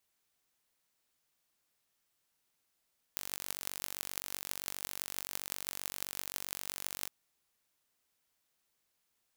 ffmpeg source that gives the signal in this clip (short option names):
-f lavfi -i "aevalsrc='0.422*eq(mod(n,926),0)*(0.5+0.5*eq(mod(n,7408),0))':d=3.92:s=44100"